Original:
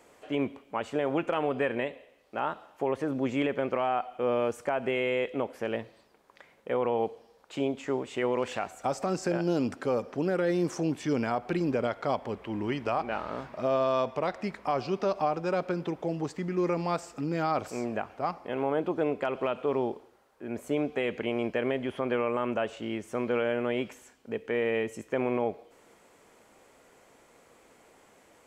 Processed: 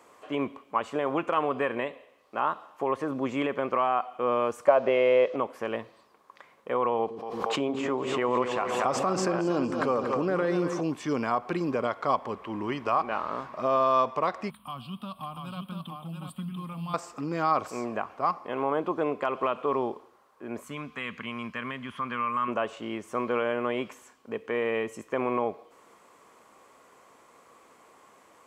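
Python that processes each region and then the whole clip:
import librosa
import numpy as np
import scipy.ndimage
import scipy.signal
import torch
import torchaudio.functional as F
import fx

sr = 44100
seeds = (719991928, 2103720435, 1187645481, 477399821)

y = fx.chain(x, sr, fx.delta_hold(step_db=-50.0),
    fx.lowpass(hz=5500.0, slope=24),
    fx.peak_eq(hz=570.0, db=15.0, octaves=0.45), at=(4.68, 5.36))
y = fx.chain(y, sr, fx.high_shelf(hz=6500.0, db=-9.0),
    fx.echo_split(split_hz=420.0, low_ms=113, high_ms=234, feedback_pct=52, wet_db=-8.5),
    fx.pre_swell(db_per_s=29.0), at=(6.99, 10.81))
y = fx.chain(y, sr, fx.curve_eq(hz=(230.0, 380.0, 750.0, 1300.0, 2000.0, 3200.0, 6300.0, 9100.0), db=(0, -28, -16, -12, -21, 6, -29, 13)),
    fx.echo_single(ms=689, db=-4.5), at=(14.5, 16.94))
y = fx.chain(y, sr, fx.highpass(hz=45.0, slope=12),
    fx.band_shelf(hz=500.0, db=-14.5, octaves=1.7), at=(20.64, 22.48))
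y = fx.highpass(y, sr, hz=130.0, slope=6)
y = fx.peak_eq(y, sr, hz=1100.0, db=12.5, octaves=0.32)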